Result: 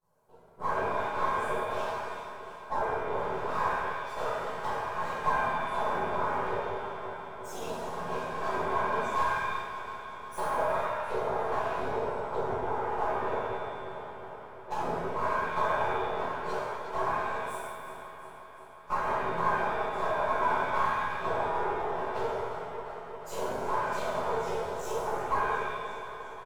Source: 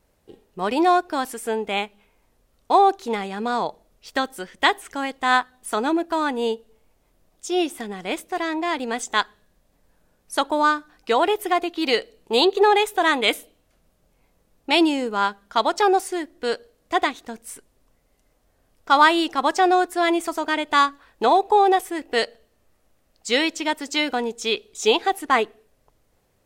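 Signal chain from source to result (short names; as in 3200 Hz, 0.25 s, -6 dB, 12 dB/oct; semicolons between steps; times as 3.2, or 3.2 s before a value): metallic resonator 62 Hz, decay 0.65 s, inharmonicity 0.002; treble ducked by the level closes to 480 Hz, closed at -25.5 dBFS; whisperiser; comb 4.8 ms, depth 64%; echo with dull and thin repeats by turns 0.177 s, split 980 Hz, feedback 82%, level -12 dB; compressor, threshold -33 dBFS, peak gain reduction 11 dB; bell 1100 Hz +9.5 dB 0.36 oct; half-wave rectifier; ten-band EQ 125 Hz +6 dB, 250 Hz -8 dB, 500 Hz +7 dB, 1000 Hz +8 dB, 2000 Hz -10 dB, 4000 Hz -5 dB; shimmer reverb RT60 1.1 s, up +7 st, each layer -8 dB, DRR -10 dB; gain -5.5 dB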